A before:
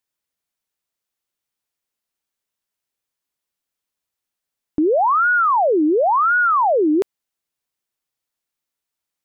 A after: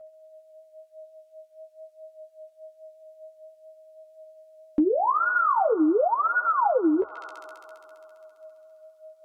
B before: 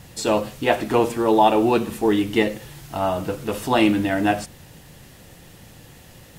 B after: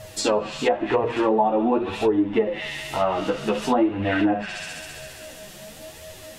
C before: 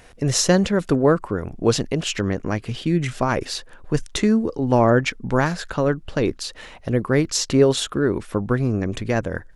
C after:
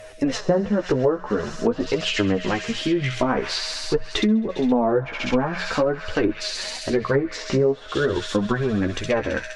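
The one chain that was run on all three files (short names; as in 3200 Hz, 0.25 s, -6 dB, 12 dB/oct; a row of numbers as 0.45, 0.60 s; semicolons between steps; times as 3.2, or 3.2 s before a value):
whine 630 Hz -46 dBFS; flange 0.99 Hz, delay 1.5 ms, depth 4.2 ms, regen +15%; low shelf 210 Hz -5.5 dB; on a send: thin delay 67 ms, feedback 84%, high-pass 2600 Hz, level -4 dB; on the sum: flange 0.47 Hz, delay 9 ms, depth 7.4 ms, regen +16%; treble ducked by the level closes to 1000 Hz, closed at -23 dBFS; notches 60/120/180 Hz; compressor 6:1, threshold -27 dBFS; match loudness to -23 LUFS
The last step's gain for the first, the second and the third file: +8.0, +10.5, +11.0 dB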